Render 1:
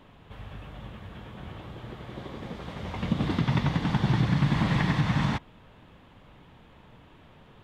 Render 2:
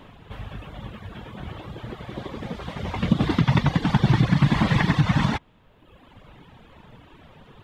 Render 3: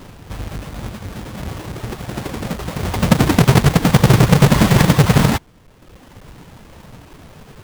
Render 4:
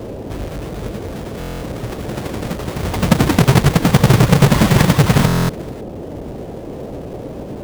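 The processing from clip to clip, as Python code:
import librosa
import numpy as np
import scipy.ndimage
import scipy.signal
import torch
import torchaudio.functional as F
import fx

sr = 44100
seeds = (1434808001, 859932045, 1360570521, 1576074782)

y1 = fx.dereverb_blind(x, sr, rt60_s=1.2)
y1 = y1 * 10.0 ** (7.5 / 20.0)
y2 = fx.halfwave_hold(y1, sr)
y2 = y2 * 10.0 ** (3.5 / 20.0)
y3 = y2 + 10.0 ** (-22.0 / 20.0) * np.pad(y2, (int(438 * sr / 1000.0), 0))[:len(y2)]
y3 = fx.dmg_noise_band(y3, sr, seeds[0], low_hz=42.0, high_hz=570.0, level_db=-29.0)
y3 = fx.buffer_glitch(y3, sr, at_s=(1.39, 5.26), block=1024, repeats=9)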